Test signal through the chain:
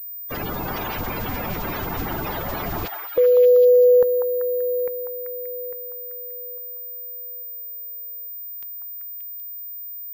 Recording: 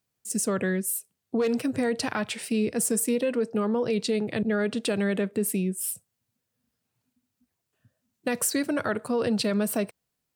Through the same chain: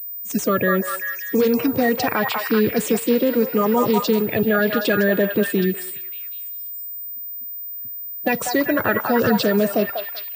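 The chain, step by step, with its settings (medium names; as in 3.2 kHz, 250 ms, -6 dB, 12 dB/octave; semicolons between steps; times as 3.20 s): coarse spectral quantiser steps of 30 dB; treble shelf 5.2 kHz -4 dB; on a send: repeats whose band climbs or falls 193 ms, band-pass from 960 Hz, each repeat 0.7 oct, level -0.5 dB; on the sum: class-D stage that switches slowly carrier 15 kHz; trim +8 dB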